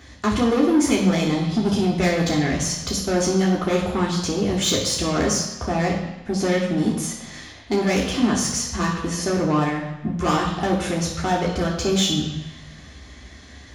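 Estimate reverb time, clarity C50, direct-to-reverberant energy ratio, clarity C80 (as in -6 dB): 1.0 s, 4.5 dB, -3.0 dB, 7.0 dB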